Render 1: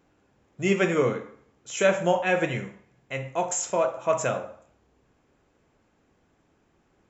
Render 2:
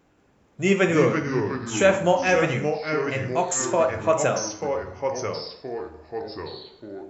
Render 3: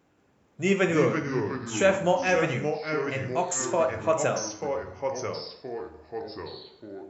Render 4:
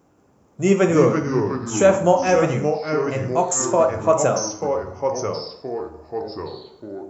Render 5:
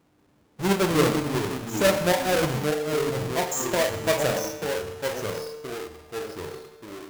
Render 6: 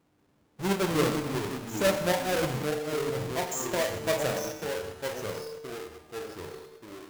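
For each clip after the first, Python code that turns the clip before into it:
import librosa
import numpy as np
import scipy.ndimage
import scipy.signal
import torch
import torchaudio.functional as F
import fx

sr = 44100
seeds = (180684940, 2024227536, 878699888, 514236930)

y1 = fx.echo_pitch(x, sr, ms=183, semitones=-3, count=3, db_per_echo=-6.0)
y1 = y1 * librosa.db_to_amplitude(3.0)
y2 = scipy.signal.sosfilt(scipy.signal.butter(2, 62.0, 'highpass', fs=sr, output='sos'), y1)
y2 = y2 * librosa.db_to_amplitude(-3.5)
y3 = fx.band_shelf(y2, sr, hz=2600.0, db=-8.5, octaves=1.7)
y3 = y3 * librosa.db_to_amplitude(7.5)
y4 = fx.halfwave_hold(y3, sr)
y4 = fx.comb_fb(y4, sr, f0_hz=150.0, decay_s=1.9, harmonics='all', damping=0.0, mix_pct=70)
y5 = fx.reverse_delay(y4, sr, ms=133, wet_db=-12)
y5 = y5 * librosa.db_to_amplitude(-5.0)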